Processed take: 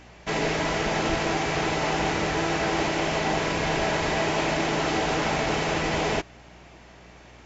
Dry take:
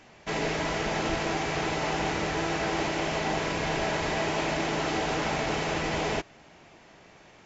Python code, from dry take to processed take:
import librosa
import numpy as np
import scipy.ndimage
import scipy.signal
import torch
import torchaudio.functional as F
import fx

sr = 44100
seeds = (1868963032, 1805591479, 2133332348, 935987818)

y = fx.add_hum(x, sr, base_hz=60, snr_db=27)
y = y * 10.0 ** (3.5 / 20.0)